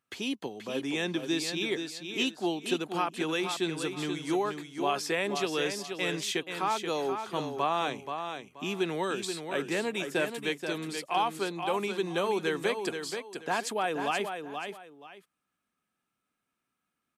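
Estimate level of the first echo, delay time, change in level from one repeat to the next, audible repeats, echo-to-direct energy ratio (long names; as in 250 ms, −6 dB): −7.0 dB, 480 ms, −12.0 dB, 2, −6.5 dB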